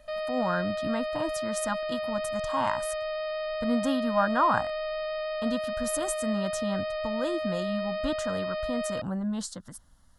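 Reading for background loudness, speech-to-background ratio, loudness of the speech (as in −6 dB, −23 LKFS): −32.5 LKFS, 1.0 dB, −31.5 LKFS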